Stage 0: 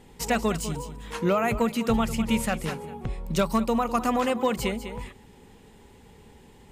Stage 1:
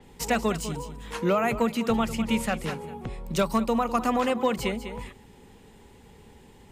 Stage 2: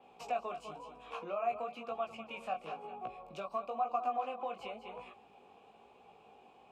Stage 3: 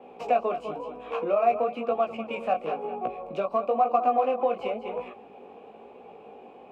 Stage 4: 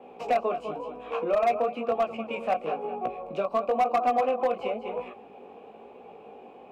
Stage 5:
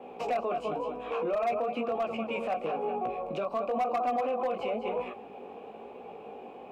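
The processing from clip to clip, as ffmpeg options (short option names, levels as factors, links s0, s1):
-filter_complex "[0:a]acrossover=split=170|490|2100[s0][s1][s2][s3];[s0]asoftclip=type=tanh:threshold=0.0211[s4];[s4][s1][s2][s3]amix=inputs=4:normalize=0,adynamicequalizer=threshold=0.00501:dfrequency=6000:dqfactor=0.7:tfrequency=6000:tqfactor=0.7:attack=5:release=100:ratio=0.375:range=2:mode=cutabove:tftype=highshelf"
-filter_complex "[0:a]flanger=delay=16:depth=5.2:speed=1,acompressor=threshold=0.0141:ratio=4,asplit=3[s0][s1][s2];[s0]bandpass=f=730:t=q:w=8,volume=1[s3];[s1]bandpass=f=1090:t=q:w=8,volume=0.501[s4];[s2]bandpass=f=2440:t=q:w=8,volume=0.355[s5];[s3][s4][s5]amix=inputs=3:normalize=0,volume=3.55"
-filter_complex "[0:a]equalizer=f=250:t=o:w=1:g=8,equalizer=f=500:t=o:w=1:g=10,equalizer=f=2000:t=o:w=1:g=5,asplit=2[s0][s1];[s1]adynamicsmooth=sensitivity=5:basefreq=3900,volume=1.33[s2];[s0][s2]amix=inputs=2:normalize=0,volume=0.841"
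-af "asoftclip=type=hard:threshold=0.126"
-af "alimiter=level_in=1.33:limit=0.0631:level=0:latency=1:release=13,volume=0.75,volume=1.33"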